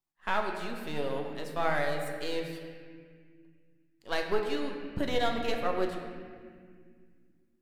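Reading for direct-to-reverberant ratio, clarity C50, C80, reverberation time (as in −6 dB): 2.0 dB, 4.0 dB, 5.0 dB, 2.0 s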